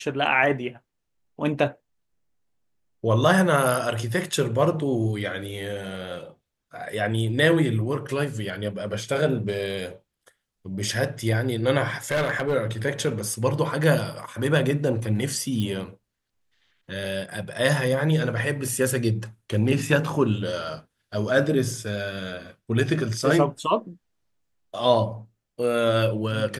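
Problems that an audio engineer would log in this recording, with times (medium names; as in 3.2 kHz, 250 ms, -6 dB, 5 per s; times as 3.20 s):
12.11–12.55 s: clipped -19 dBFS
15.60 s: pop -17 dBFS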